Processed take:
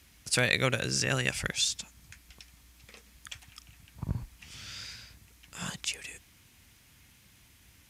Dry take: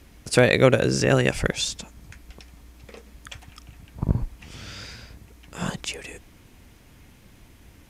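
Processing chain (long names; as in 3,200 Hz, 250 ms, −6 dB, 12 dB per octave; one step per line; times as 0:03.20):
high-pass filter 60 Hz
guitar amp tone stack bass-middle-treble 5-5-5
level +5.5 dB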